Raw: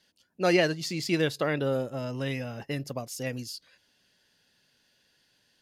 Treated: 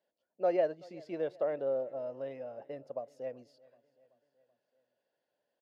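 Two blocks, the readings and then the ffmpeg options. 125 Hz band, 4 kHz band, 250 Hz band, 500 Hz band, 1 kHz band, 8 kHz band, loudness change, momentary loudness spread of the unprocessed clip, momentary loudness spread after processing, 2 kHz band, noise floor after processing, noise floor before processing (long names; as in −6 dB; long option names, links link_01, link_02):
−22.5 dB, below −25 dB, −14.0 dB, −3.5 dB, −6.0 dB, below −30 dB, −6.5 dB, 12 LU, 13 LU, −19.5 dB, below −85 dBFS, −70 dBFS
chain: -filter_complex "[0:a]bandpass=frequency=600:width_type=q:width=3.4:csg=0,asplit=2[link_01][link_02];[link_02]aecho=0:1:381|762|1143|1524:0.0668|0.0388|0.0225|0.013[link_03];[link_01][link_03]amix=inputs=2:normalize=0"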